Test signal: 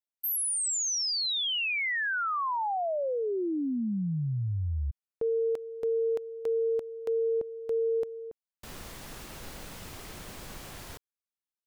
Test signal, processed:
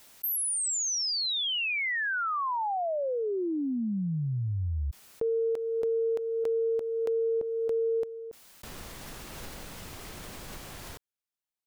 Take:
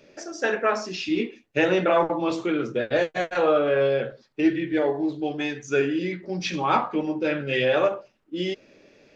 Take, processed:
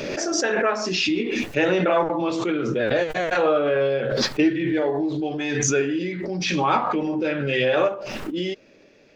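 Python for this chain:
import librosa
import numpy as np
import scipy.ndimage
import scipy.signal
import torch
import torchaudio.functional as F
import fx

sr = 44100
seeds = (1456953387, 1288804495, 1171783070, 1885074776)

y = fx.pre_swell(x, sr, db_per_s=23.0)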